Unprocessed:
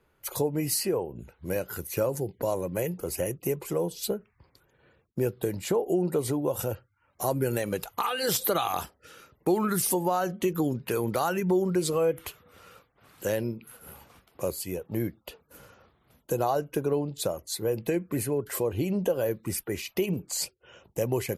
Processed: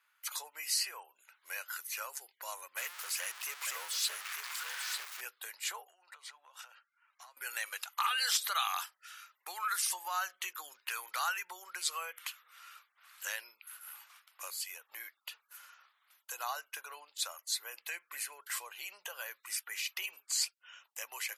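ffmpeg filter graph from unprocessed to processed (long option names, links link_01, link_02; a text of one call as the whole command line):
ffmpeg -i in.wav -filter_complex "[0:a]asettb=1/sr,asplit=3[link_01][link_02][link_03];[link_01]atrim=end=2.774[link_04];[link_02]atrim=start=2.77:end=5.21,asetpts=PTS-STARTPTS,afade=type=in:duration=0.004:curve=qsin,afade=type=out:start_time=2.436:duration=0.004:curve=qsin,aeval=exprs='val(0)+0.5*0.0237*sgn(val(0))':channel_layout=same,aecho=1:1:894:0.447,atrim=end_sample=107604[link_05];[link_03]atrim=start=5.206[link_06];[link_04][link_05]acrossfade=duration=0.004:curve1=hsin:curve2=qsin[link_07];[link_07][link_06]acrossfade=duration=0.004:curve1=qsin:curve2=hsin,asettb=1/sr,asplit=3[link_08][link_09][link_10];[link_08]atrim=end=5.874[link_11];[link_09]atrim=start=5.87:end=7.37,asetpts=PTS-STARTPTS,afade=type=in:duration=0.004:curve=qsin,afade=type=out:start_time=1.496:duration=0.004:curve=qsin,highpass=580,lowpass=4400,acompressor=threshold=-42dB:ratio=8:attack=3.2:release=140:knee=1:detection=peak[link_12];[link_10]atrim=start=7.366[link_13];[link_11][link_12]acrossfade=duration=0.004:curve1=hsin:curve2=qsin[link_14];[link_14][link_13]acrossfade=duration=0.004:curve1=qsin:curve2=hsin,acrossover=split=8400[link_15][link_16];[link_16]acompressor=threshold=-44dB:ratio=4:attack=1:release=60[link_17];[link_15][link_17]amix=inputs=2:normalize=0,highpass=frequency=1200:width=0.5412,highpass=frequency=1200:width=1.3066,volume=1dB" out.wav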